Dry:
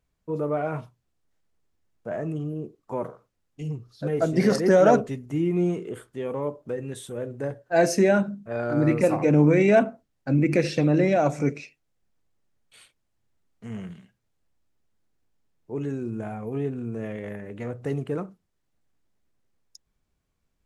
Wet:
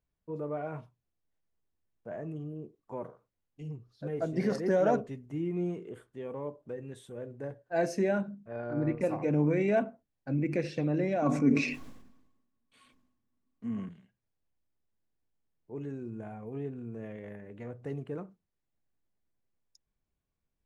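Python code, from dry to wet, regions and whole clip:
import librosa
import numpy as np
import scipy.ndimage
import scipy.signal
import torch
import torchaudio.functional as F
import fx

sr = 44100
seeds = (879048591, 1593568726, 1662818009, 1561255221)

y = fx.chain(x, sr, fx.lowpass(hz=2500.0, slope=6),
    fx.transient(attack_db=1, sustain_db=-8), at=(8.51, 9.01))
y = fx.chain(y, sr, fx.small_body(hz=(250.0, 1100.0), ring_ms=85, db=18),
    fx.sustainer(db_per_s=56.0), at=(11.22, 13.89))
y = fx.high_shelf(y, sr, hz=4500.0, db=-8.5)
y = fx.notch(y, sr, hz=1300.0, q=16.0)
y = F.gain(torch.from_numpy(y), -9.0).numpy()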